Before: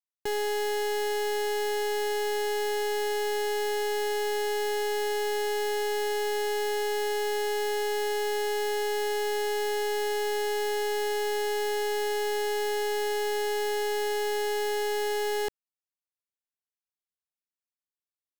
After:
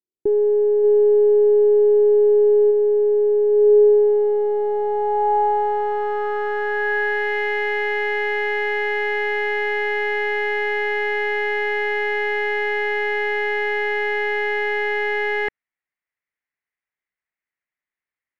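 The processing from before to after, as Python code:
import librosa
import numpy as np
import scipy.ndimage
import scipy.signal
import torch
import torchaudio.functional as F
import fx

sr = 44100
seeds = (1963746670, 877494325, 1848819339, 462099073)

y = fx.filter_sweep_lowpass(x, sr, from_hz=370.0, to_hz=2000.0, start_s=3.48, end_s=7.37, q=5.6)
y = fx.env_flatten(y, sr, amount_pct=50, at=(0.83, 2.7), fade=0.02)
y = y * 10.0 ** (4.0 / 20.0)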